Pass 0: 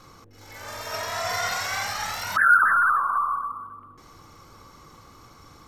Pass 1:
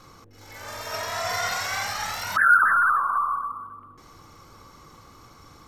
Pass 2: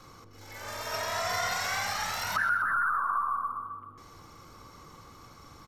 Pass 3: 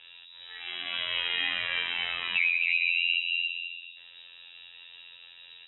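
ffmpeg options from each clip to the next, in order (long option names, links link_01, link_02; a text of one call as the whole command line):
ffmpeg -i in.wav -af anull out.wav
ffmpeg -i in.wav -filter_complex "[0:a]acrossover=split=280[link_01][link_02];[link_02]acompressor=threshold=-25dB:ratio=4[link_03];[link_01][link_03]amix=inputs=2:normalize=0,asplit=2[link_04][link_05];[link_05]adelay=129,lowpass=frequency=4300:poles=1,volume=-10dB,asplit=2[link_06][link_07];[link_07]adelay=129,lowpass=frequency=4300:poles=1,volume=0.47,asplit=2[link_08][link_09];[link_09]adelay=129,lowpass=frequency=4300:poles=1,volume=0.47,asplit=2[link_10][link_11];[link_11]adelay=129,lowpass=frequency=4300:poles=1,volume=0.47,asplit=2[link_12][link_13];[link_13]adelay=129,lowpass=frequency=4300:poles=1,volume=0.47[link_14];[link_06][link_08][link_10][link_12][link_14]amix=inputs=5:normalize=0[link_15];[link_04][link_15]amix=inputs=2:normalize=0,volume=-2dB" out.wav
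ffmpeg -i in.wav -af "afftfilt=real='hypot(re,im)*cos(PI*b)':imag='0':win_size=2048:overlap=0.75,lowpass=frequency=3300:width_type=q:width=0.5098,lowpass=frequency=3300:width_type=q:width=0.6013,lowpass=frequency=3300:width_type=q:width=0.9,lowpass=frequency=3300:width_type=q:width=2.563,afreqshift=-3900,volume=5dB" out.wav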